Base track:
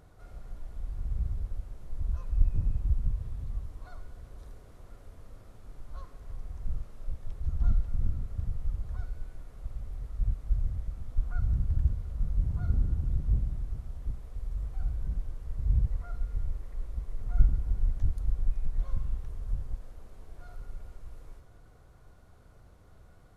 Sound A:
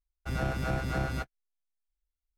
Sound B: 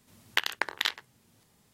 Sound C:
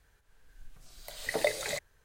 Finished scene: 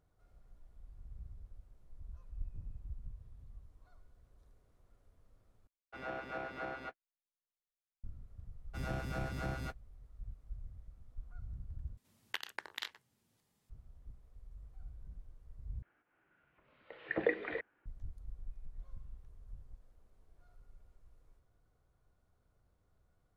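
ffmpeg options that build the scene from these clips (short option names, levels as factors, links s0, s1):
-filter_complex "[1:a]asplit=2[s0][s1];[0:a]volume=0.126[s2];[s0]acrossover=split=290 3500:gain=0.0794 1 0.0891[s3][s4][s5];[s3][s4][s5]amix=inputs=3:normalize=0[s6];[3:a]highpass=f=210:t=q:w=0.5412,highpass=f=210:t=q:w=1.307,lowpass=f=2700:t=q:w=0.5176,lowpass=f=2700:t=q:w=0.7071,lowpass=f=2700:t=q:w=1.932,afreqshift=-120[s7];[s2]asplit=4[s8][s9][s10][s11];[s8]atrim=end=5.674[s12];[s6]atrim=end=2.37,asetpts=PTS-STARTPTS,volume=0.473[s13];[s9]atrim=start=8.036:end=11.974[s14];[2:a]atrim=end=1.73,asetpts=PTS-STARTPTS,volume=0.211[s15];[s10]atrim=start=13.696:end=15.824[s16];[s7]atrim=end=2.04,asetpts=PTS-STARTPTS,volume=0.708[s17];[s11]atrim=start=17.856[s18];[s1]atrim=end=2.37,asetpts=PTS-STARTPTS,volume=0.398,afade=t=in:d=0.004:c=hsin,afade=t=out:st=2.366:d=0.004:c=hsin,adelay=8480[s19];[s12][s13]acrossfade=d=0.004:c1=hsin:c2=hsin[s20];[s20][s14]acrossfade=d=0.004:c1=hsin:c2=hsin[s21];[s21][s15]acrossfade=d=0.004:c1=hsin:c2=hsin[s22];[s22][s16]acrossfade=d=0.004:c1=hsin:c2=hsin[s23];[s23][s17]acrossfade=d=0.004:c1=hsin:c2=hsin[s24];[s24][s18]acrossfade=d=0.004:c1=hsin:c2=hsin[s25];[s25][s19]amix=inputs=2:normalize=0"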